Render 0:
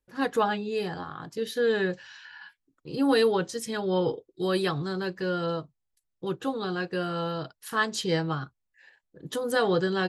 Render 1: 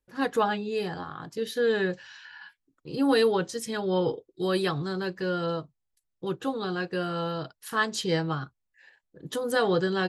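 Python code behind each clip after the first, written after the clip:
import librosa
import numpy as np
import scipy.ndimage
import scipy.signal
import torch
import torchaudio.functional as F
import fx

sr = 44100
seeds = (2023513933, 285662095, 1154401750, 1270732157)

y = x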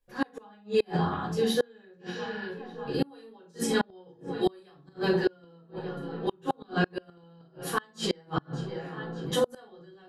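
y = fx.echo_filtered(x, sr, ms=595, feedback_pct=83, hz=4200.0, wet_db=-19.5)
y = fx.room_shoebox(y, sr, seeds[0], volume_m3=270.0, walls='furnished', distance_m=5.6)
y = fx.gate_flip(y, sr, shuts_db=-10.0, range_db=-34)
y = F.gain(torch.from_numpy(y), -4.0).numpy()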